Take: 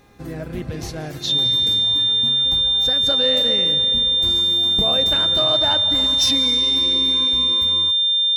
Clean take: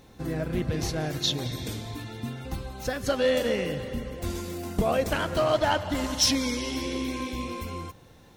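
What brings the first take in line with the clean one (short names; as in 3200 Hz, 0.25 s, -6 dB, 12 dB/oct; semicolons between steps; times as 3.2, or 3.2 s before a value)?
de-hum 406.6 Hz, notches 6; notch 3600 Hz, Q 30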